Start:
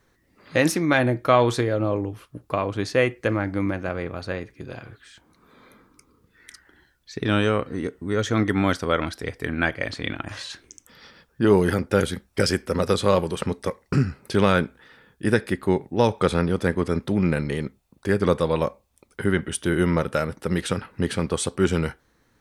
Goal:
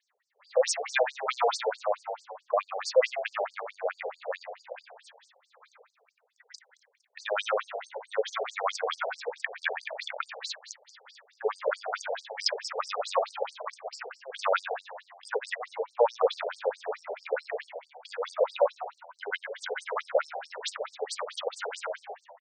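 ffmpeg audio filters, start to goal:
-filter_complex "[0:a]agate=range=-6dB:threshold=-55dB:ratio=16:detection=peak,aeval=exprs='0.596*(cos(1*acos(clip(val(0)/0.596,-1,1)))-cos(1*PI/2))+0.0376*(cos(5*acos(clip(val(0)/0.596,-1,1)))-cos(5*PI/2))':c=same,asplit=8[a][b][c][d][e][f][g][h];[b]adelay=92,afreqshift=86,volume=-9dB[i];[c]adelay=184,afreqshift=172,volume=-13.4dB[j];[d]adelay=276,afreqshift=258,volume=-17.9dB[k];[e]adelay=368,afreqshift=344,volume=-22.3dB[l];[f]adelay=460,afreqshift=430,volume=-26.7dB[m];[g]adelay=552,afreqshift=516,volume=-31.2dB[n];[h]adelay=644,afreqshift=602,volume=-35.6dB[o];[a][i][j][k][l][m][n][o]amix=inputs=8:normalize=0,afftfilt=real='re*between(b*sr/1024,570*pow(6400/570,0.5+0.5*sin(2*PI*4.6*pts/sr))/1.41,570*pow(6400/570,0.5+0.5*sin(2*PI*4.6*pts/sr))*1.41)':imag='im*between(b*sr/1024,570*pow(6400/570,0.5+0.5*sin(2*PI*4.6*pts/sr))/1.41,570*pow(6400/570,0.5+0.5*sin(2*PI*4.6*pts/sr))*1.41)':win_size=1024:overlap=0.75"

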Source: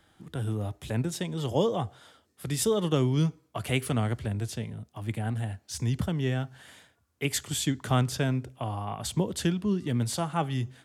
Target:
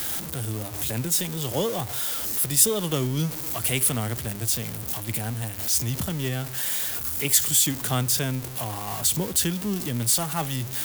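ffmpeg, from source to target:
-af "aeval=exprs='val(0)+0.5*0.0266*sgn(val(0))':c=same,aemphasis=mode=production:type=75fm,bandreject=f=50:t=h:w=6,bandreject=f=100:t=h:w=6,volume=-1.5dB"

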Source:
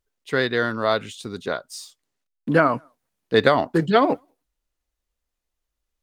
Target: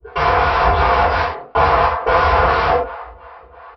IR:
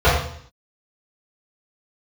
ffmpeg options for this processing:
-filter_complex "[0:a]acrossover=split=100|2400[a][b][c];[b]dynaudnorm=f=140:g=5:m=5.5dB[d];[a][d][c]amix=inputs=3:normalize=0,aeval=exprs='0.891*sin(PI/2*5.62*val(0)/0.891)':c=same,asplit=2[e][f];[f]highpass=f=720:p=1,volume=31dB,asoftclip=type=tanh:threshold=-1dB[g];[e][g]amix=inputs=2:normalize=0,lowpass=f=2.7k:p=1,volume=-6dB,alimiter=limit=-11dB:level=0:latency=1:release=31,adynamicequalizer=threshold=0.0282:dfrequency=640:dqfactor=1.2:tfrequency=640:tqfactor=1.2:attack=5:release=100:ratio=0.375:range=2:mode=boostabove:tftype=bell,atempo=1.6,agate=range=-10dB:threshold=-43dB:ratio=16:detection=peak,acrossover=split=520[h][i];[h]aeval=exprs='val(0)*(1-1/2+1/2*cos(2*PI*2.9*n/s))':c=same[j];[i]aeval=exprs='val(0)*(1-1/2-1/2*cos(2*PI*2.9*n/s))':c=same[k];[j][k]amix=inputs=2:normalize=0,aresample=11025,aeval=exprs='(mod(10.6*val(0)+1,2)-1)/10.6':c=same,aresample=44100,acompressor=threshold=-30dB:ratio=10,equalizer=f=125:t=o:w=1:g=-9,equalizer=f=1k:t=o:w=1:g=10,equalizer=f=4k:t=o:w=1:g=-9[l];[1:a]atrim=start_sample=2205,atrim=end_sample=6174[m];[l][m]afir=irnorm=-1:irlink=0,volume=-9dB"

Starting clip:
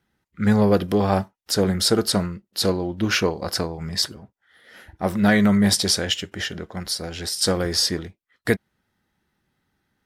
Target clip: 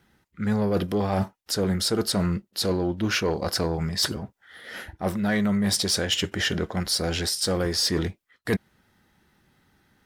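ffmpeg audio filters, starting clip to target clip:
-af "areverse,acompressor=threshold=-30dB:ratio=6,areverse,asoftclip=type=tanh:threshold=-23dB,volume=9dB"

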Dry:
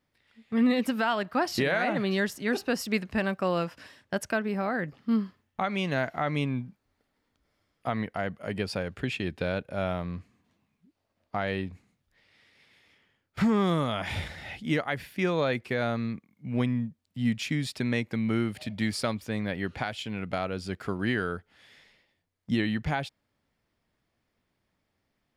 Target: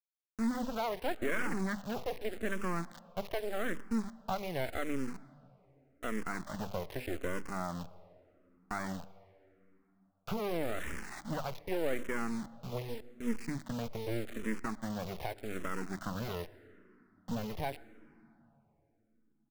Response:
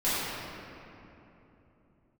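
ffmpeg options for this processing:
-filter_complex "[0:a]agate=range=-21dB:threshold=-52dB:ratio=16:detection=peak,lowpass=f=1.8k:w=0.5412,lowpass=f=1.8k:w=1.3066,equalizer=f=110:t=o:w=0.48:g=-13.5,bandreject=f=50:t=h:w=6,bandreject=f=100:t=h:w=6,bandreject=f=150:t=h:w=6,bandreject=f=200:t=h:w=6,bandreject=f=250:t=h:w=6,asplit=2[a][b];[b]acompressor=threshold=-38dB:ratio=16,volume=-0.5dB[c];[a][c]amix=inputs=2:normalize=0,asoftclip=type=tanh:threshold=-18dB,acrusher=bits=4:dc=4:mix=0:aa=0.000001,asplit=2[d][e];[e]adelay=150,highpass=300,lowpass=3.4k,asoftclip=type=hard:threshold=-26.5dB,volume=-25dB[f];[d][f]amix=inputs=2:normalize=0,atempo=1.3,asplit=2[g][h];[1:a]atrim=start_sample=2205,adelay=105[i];[h][i]afir=irnorm=-1:irlink=0,volume=-33.5dB[j];[g][j]amix=inputs=2:normalize=0,asplit=2[k][l];[l]afreqshift=-0.84[m];[k][m]amix=inputs=2:normalize=1"

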